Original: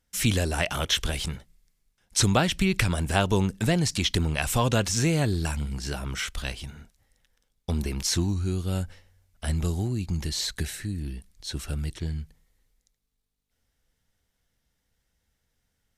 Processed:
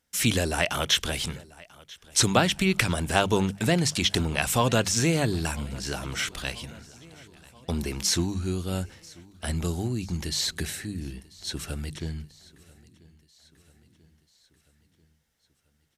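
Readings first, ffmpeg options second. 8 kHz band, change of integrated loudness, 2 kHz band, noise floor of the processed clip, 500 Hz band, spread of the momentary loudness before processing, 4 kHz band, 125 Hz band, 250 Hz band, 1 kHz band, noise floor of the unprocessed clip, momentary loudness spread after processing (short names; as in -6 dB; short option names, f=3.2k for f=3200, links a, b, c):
+2.0 dB, +0.5 dB, +2.0 dB, -69 dBFS, +1.5 dB, 12 LU, +2.0 dB, -2.5 dB, 0.0 dB, +2.0 dB, -77 dBFS, 14 LU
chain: -af "highpass=f=130:p=1,bandreject=f=50:t=h:w=6,bandreject=f=100:t=h:w=6,bandreject=f=150:t=h:w=6,bandreject=f=200:t=h:w=6,aecho=1:1:989|1978|2967|3956:0.0708|0.0418|0.0246|0.0145,volume=2dB"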